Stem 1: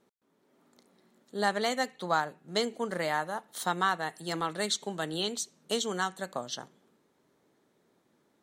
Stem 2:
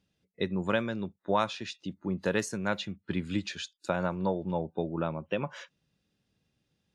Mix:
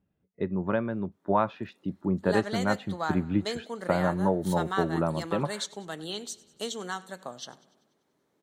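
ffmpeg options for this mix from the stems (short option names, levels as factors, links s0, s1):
-filter_complex "[0:a]adelay=900,volume=0.631,asplit=2[s0][s1];[s1]volume=0.0891[s2];[1:a]dynaudnorm=f=210:g=11:m=1.5,lowpass=1300,bandreject=f=500:w=12,volume=1.19[s3];[s2]aecho=0:1:97|194|291|388|485|582|679|776|873:1|0.59|0.348|0.205|0.121|0.0715|0.0422|0.0249|0.0147[s4];[s0][s3][s4]amix=inputs=3:normalize=0"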